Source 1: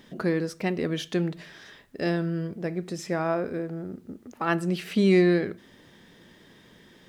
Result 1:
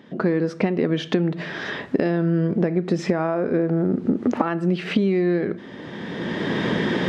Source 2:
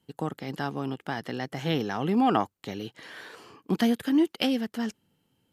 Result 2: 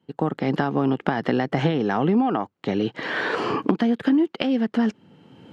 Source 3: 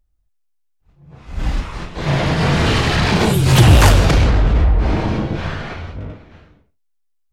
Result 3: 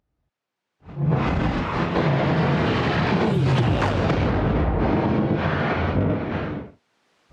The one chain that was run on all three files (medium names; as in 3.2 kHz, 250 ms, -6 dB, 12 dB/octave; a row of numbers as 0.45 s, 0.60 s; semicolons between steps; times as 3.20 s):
recorder AGC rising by 19 dB/s; high-pass 140 Hz 12 dB/octave; compression 6:1, threshold -23 dBFS; tape spacing loss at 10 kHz 27 dB; trim +7 dB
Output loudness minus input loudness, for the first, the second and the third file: +4.0 LU, +5.0 LU, -6.5 LU